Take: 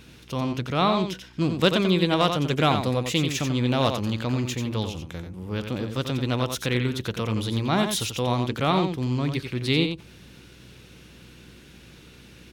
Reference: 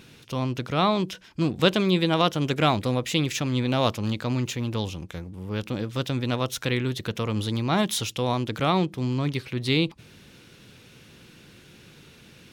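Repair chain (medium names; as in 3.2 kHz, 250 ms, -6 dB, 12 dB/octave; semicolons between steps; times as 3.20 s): clip repair -9.5 dBFS; de-hum 61.3 Hz, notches 6; inverse comb 89 ms -7 dB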